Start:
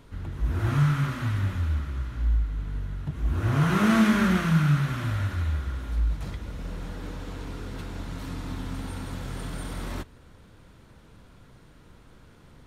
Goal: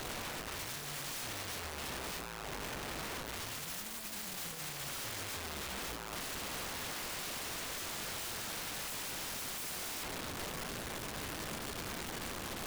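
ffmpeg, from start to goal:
-af "bandreject=f=150.1:t=h:w=4,bandreject=f=300.2:t=h:w=4,bandreject=f=450.3:t=h:w=4,bandreject=f=600.4:t=h:w=4,bandreject=f=750.5:t=h:w=4,bandreject=f=900.6:t=h:w=4,bandreject=f=1050.7:t=h:w=4,bandreject=f=1200.8:t=h:w=4,bandreject=f=1350.9:t=h:w=4,bandreject=f=1501:t=h:w=4,bandreject=f=1651.1:t=h:w=4,bandreject=f=1801.2:t=h:w=4,bandreject=f=1951.3:t=h:w=4,asoftclip=type=tanh:threshold=0.0501,alimiter=level_in=4.73:limit=0.0631:level=0:latency=1:release=34,volume=0.211,aeval=exprs='(mod(299*val(0)+1,2)-1)/299':c=same,volume=4.47"

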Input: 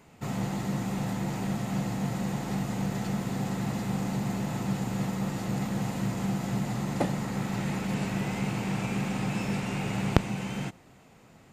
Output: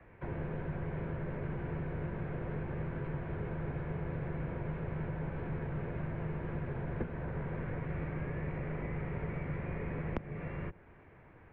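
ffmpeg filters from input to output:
-filter_complex "[0:a]highpass=f=230:t=q:w=0.5412,highpass=f=230:t=q:w=1.307,lowpass=f=2700:t=q:w=0.5176,lowpass=f=2700:t=q:w=0.7071,lowpass=f=2700:t=q:w=1.932,afreqshift=-350,acrossover=split=83|590[s0][s1][s2];[s0]acompressor=threshold=0.00794:ratio=4[s3];[s1]acompressor=threshold=0.0141:ratio=4[s4];[s2]acompressor=threshold=0.00316:ratio=4[s5];[s3][s4][s5]amix=inputs=3:normalize=0,volume=1.12"

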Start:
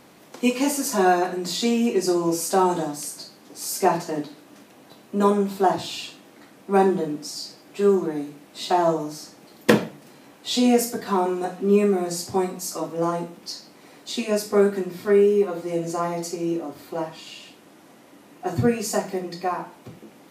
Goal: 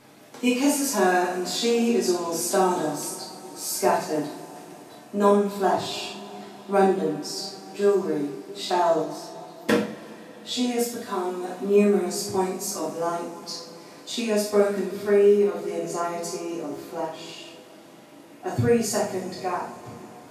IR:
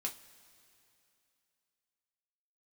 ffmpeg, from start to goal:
-filter_complex "[0:a]asplit=3[s0][s1][s2];[s0]afade=t=out:st=9.01:d=0.02[s3];[s1]flanger=delay=2.6:depth=1.3:regen=-58:speed=1.7:shape=triangular,afade=t=in:st=9.01:d=0.02,afade=t=out:st=11.47:d=0.02[s4];[s2]afade=t=in:st=11.47:d=0.02[s5];[s3][s4][s5]amix=inputs=3:normalize=0[s6];[1:a]atrim=start_sample=2205,asetrate=27342,aresample=44100[s7];[s6][s7]afir=irnorm=-1:irlink=0,volume=0.708"

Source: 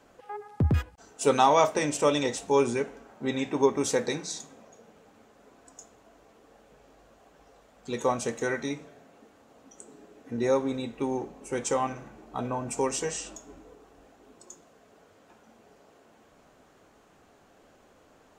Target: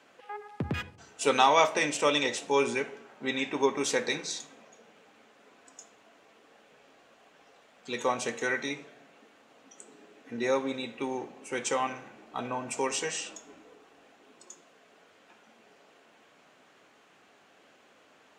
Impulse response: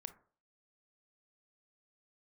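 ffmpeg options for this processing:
-filter_complex "[0:a]highpass=160,equalizer=f=2600:w=0.66:g=10.5,asplit=2[s0][s1];[1:a]atrim=start_sample=2205,asetrate=22491,aresample=44100[s2];[s1][s2]afir=irnorm=-1:irlink=0,volume=0.794[s3];[s0][s3]amix=inputs=2:normalize=0,volume=0.376"

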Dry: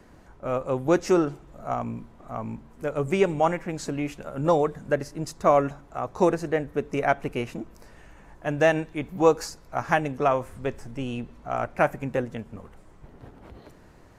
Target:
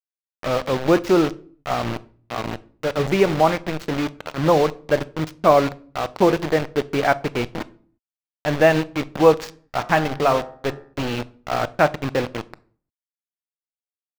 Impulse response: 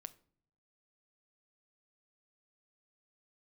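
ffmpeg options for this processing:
-filter_complex "[0:a]acrusher=bits=4:mix=0:aa=0.000001,asettb=1/sr,asplit=3[s0][s1][s2];[s0]atrim=end=9.484[s3];[s1]atrim=start=9.48:end=10.94,asetpts=PTS-STARTPTS,afade=t=in:d=0.004:c=qsin,afade=t=out:st=1.456:d=0.004:c=qsin,bandreject=f=71.55:t=h:w=4,bandreject=f=143.1:t=h:w=4,bandreject=f=214.65:t=h:w=4,bandreject=f=286.2:t=h:w=4,bandreject=f=357.75:t=h:w=4,bandreject=f=429.3:t=h:w=4,bandreject=f=500.85:t=h:w=4,bandreject=f=572.4:t=h:w=4,bandreject=f=643.95:t=h:w=4,bandreject=f=715.5:t=h:w=4,bandreject=f=787.05:t=h:w=4,bandreject=f=858.6:t=h:w=4,bandreject=f=930.15:t=h:w=4,bandreject=f=1001.7:t=h:w=4,bandreject=f=1073.25:t=h:w=4,bandreject=f=1144.8:t=h:w=4,bandreject=f=1216.35:t=h:w=4,bandreject=f=1287.9:t=h:w=4,bandreject=f=1359.45:t=h:w=4,bandreject=f=1431:t=h:w=4,bandreject=f=1502.55:t=h:w=4,bandreject=f=1574.1:t=h:w=4,bandreject=f=1645.65:t=h:w=4,bandreject=f=1717.2:t=h:w=4,bandreject=f=1788.75:t=h:w=4,bandreject=f=1860.3:t=h:w=4,bandreject=f=1931.85:t=h:w=4[s4];[s2]atrim=start=10.936[s5];[s3][s4]acrossfade=d=0.004:c1=hsin:c2=qsin[s6];[s6][s5]acrossfade=d=0.004:c1=qsin:c2=hsin,asplit=2[s7][s8];[1:a]atrim=start_sample=2205,afade=t=out:st=0.41:d=0.01,atrim=end_sample=18522,lowpass=5400[s9];[s8][s9]afir=irnorm=-1:irlink=0,volume=4.73[s10];[s7][s10]amix=inputs=2:normalize=0,volume=0.501"

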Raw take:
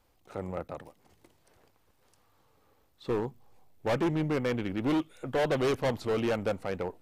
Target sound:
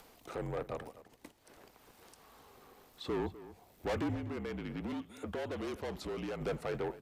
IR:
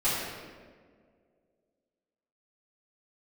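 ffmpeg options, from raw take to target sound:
-filter_complex "[0:a]agate=range=0.251:threshold=0.00112:ratio=16:detection=peak,highpass=f=190:p=1,acompressor=mode=upward:threshold=0.00562:ratio=2.5,alimiter=level_in=1.12:limit=0.0631:level=0:latency=1:release=16,volume=0.891,asettb=1/sr,asplit=3[s0][s1][s2];[s0]atrim=end=4.144[s3];[s1]atrim=start=4.14:end=6.41,asetpts=PTS-STARTPTS,afade=t=in:d=0.004:c=qsin,afade=t=out:st=2.266:d=0.004:c=qsin,acompressor=threshold=0.0112:ratio=6[s4];[s2]atrim=start=6.406[s5];[s3][s4]acrossfade=d=0.004:c1=hsin:c2=qsin[s6];[s6][s5]acrossfade=d=0.004:c1=qsin:c2=hsin,asoftclip=type=tanh:threshold=0.0224,afreqshift=-47,asplit=2[s7][s8];[s8]adelay=250.7,volume=0.158,highshelf=f=4000:g=-5.64[s9];[s7][s9]amix=inputs=2:normalize=0,volume=1.41"

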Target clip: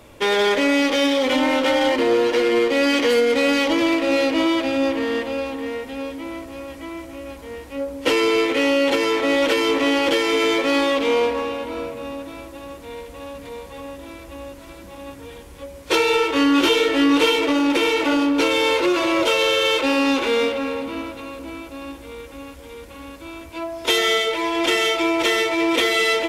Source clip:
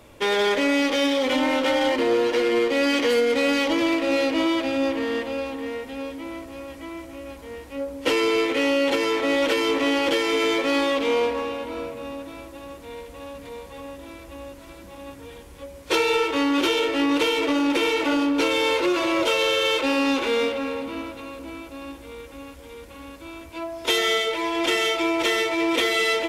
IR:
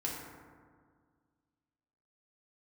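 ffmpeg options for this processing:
-filter_complex "[0:a]asettb=1/sr,asplit=3[s0][s1][s2];[s0]atrim=end=16.334[s3];[s1]atrim=start=16.33:end=17.36,asetpts=PTS-STARTPTS,afade=t=in:d=0.004:c=qsin,afade=t=out:st=1.026:d=0.004:c=qsin,asplit=2[s4][s5];[s5]adelay=22,volume=0.668[s6];[s4][s6]amix=inputs=2:normalize=0,atrim=end_sample=45423[s7];[s2]atrim=start=17.356[s8];[s3][s7]acrossfade=d=0.004:c1=hsin:c2=qsin[s9];[s9][s8]acrossfade=d=0.004:c1=qsin:c2=hsin,volume=1.41"

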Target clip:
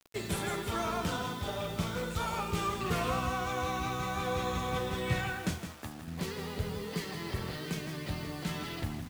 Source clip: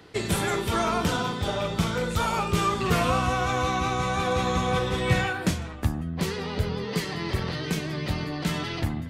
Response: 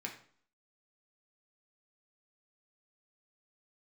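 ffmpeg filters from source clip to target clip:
-filter_complex "[0:a]asettb=1/sr,asplit=3[s0][s1][s2];[s0]atrim=end=5.584[s3];[s1]atrim=start=5.58:end=6.08,asetpts=PTS-STARTPTS,afade=t=in:d=0.004:c=qsin,afade=t=out:st=0.496:d=0.004:c=qsin,highpass=f=380:p=1[s4];[s2]atrim=start=6.076[s5];[s3][s4]acrossfade=d=0.004:c1=hsin:c2=qsin[s6];[s6][s5]acrossfade=d=0.004:c1=qsin:c2=hsin,acrusher=bits=6:mix=0:aa=0.000001,asplit=2[s7][s8];[s8]aecho=0:1:163:0.335[s9];[s7][s9]amix=inputs=2:normalize=0,volume=0.376"

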